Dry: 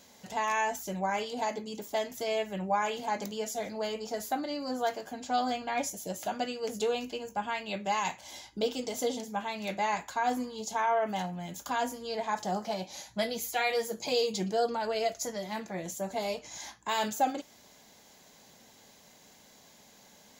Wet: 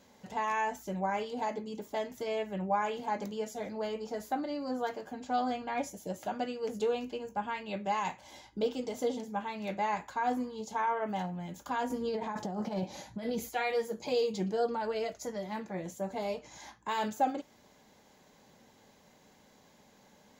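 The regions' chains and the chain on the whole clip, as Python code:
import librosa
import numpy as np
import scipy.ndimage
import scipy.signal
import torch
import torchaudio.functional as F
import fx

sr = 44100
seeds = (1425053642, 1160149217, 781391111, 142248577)

y = fx.chain(x, sr, fx.peak_eq(hz=190.0, db=6.5, octaves=2.9),
    fx.over_compress(threshold_db=-33.0, ratio=-1.0), at=(11.9, 13.49))
y = fx.high_shelf(y, sr, hz=2600.0, db=-11.5)
y = fx.notch(y, sr, hz=680.0, q=12.0)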